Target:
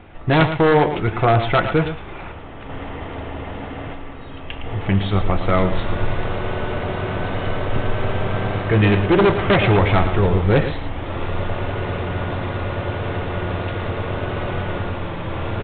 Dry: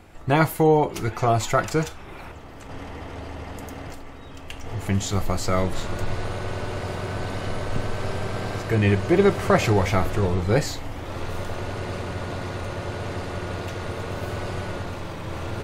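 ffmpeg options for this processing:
-af "aresample=8000,aeval=exprs='0.211*(abs(mod(val(0)/0.211+3,4)-2)-1)':c=same,aresample=44100,aecho=1:1:112:0.316,volume=5.5dB"

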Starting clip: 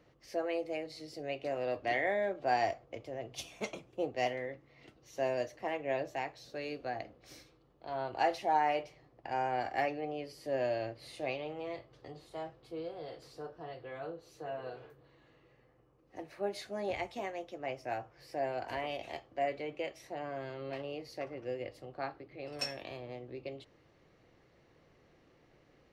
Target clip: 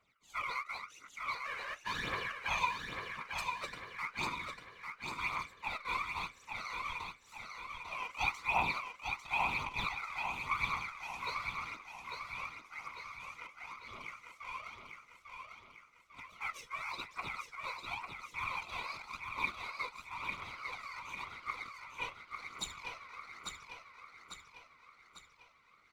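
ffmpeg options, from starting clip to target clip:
-filter_complex "[0:a]highpass=280,asettb=1/sr,asplit=3[a][b][c];[a]atrim=end=1.364[d];[b]atrim=start=1.36:end=2.48,asetpts=PTS-STARTPTS,afade=t=in:d=0.004:c=qsin,afade=t=out:st=1.116:d=0.004:c=qsin,aeval=exprs='max(val(0),0)':c=same[e];[c]atrim=start=2.476[f];[d][e]acrossfade=d=0.004:c1=hsin:c2=qsin[g];[g][f]acrossfade=d=0.004:c1=qsin:c2=hsin,aeval=exprs='val(0)*sin(2*PI*1700*n/s)':c=same,afftfilt=real='hypot(re,im)*cos(2*PI*random(0))':imag='hypot(re,im)*sin(2*PI*random(1))':win_size=512:overlap=0.75,asplit=2[h][i];[i]aeval=exprs='sgn(val(0))*max(abs(val(0))-0.00251,0)':c=same,volume=-3.5dB[j];[h][j]amix=inputs=2:normalize=0,aphaser=in_gain=1:out_gain=1:delay=2.1:decay=0.61:speed=0.93:type=triangular,asplit=2[k][l];[l]aecho=0:1:848|1696|2544|3392|4240|5088:0.562|0.281|0.141|0.0703|0.0351|0.0176[m];[k][m]amix=inputs=2:normalize=0" -ar 48000 -c:a libopus -b:a 256k

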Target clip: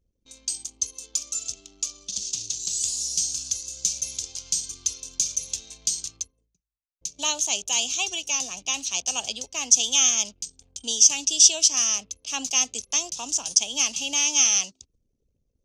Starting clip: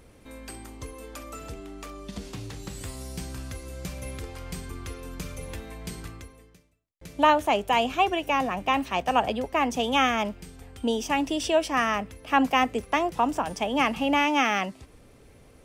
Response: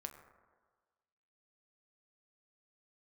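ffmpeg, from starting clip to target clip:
-af "anlmdn=0.0251,aexciter=amount=14:drive=6.7:freq=2.9k,lowpass=f=6.4k:t=q:w=6.1,volume=-15dB"

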